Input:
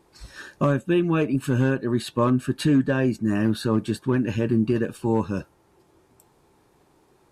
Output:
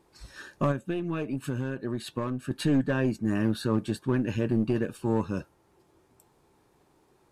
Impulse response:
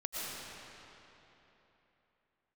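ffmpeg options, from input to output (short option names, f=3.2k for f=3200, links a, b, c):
-filter_complex "[0:a]asplit=2[a][b];[b]asoftclip=type=hard:threshold=-20.5dB,volume=-8.5dB[c];[a][c]amix=inputs=2:normalize=0,aeval=exprs='0.316*(cos(1*acos(clip(val(0)/0.316,-1,1)))-cos(1*PI/2))+0.0562*(cos(2*acos(clip(val(0)/0.316,-1,1)))-cos(2*PI/2))+0.00224*(cos(8*acos(clip(val(0)/0.316,-1,1)))-cos(8*PI/2))':c=same,asettb=1/sr,asplit=3[d][e][f];[d]atrim=end=0.714[g];[e]atrim=start=0.71:end=2.51,asetpts=PTS-STARTPTS,afade=t=in:d=0.004:c=qsin,afade=t=out:st=1.796:d=0.004:c=qsin,acompressor=threshold=-20dB:ratio=6[h];[f]atrim=start=2.506[i];[g][h]acrossfade=d=0.004:c1=hsin:c2=qsin[j];[j][i]acrossfade=d=0.004:c1=qsin:c2=hsin,volume=-7dB"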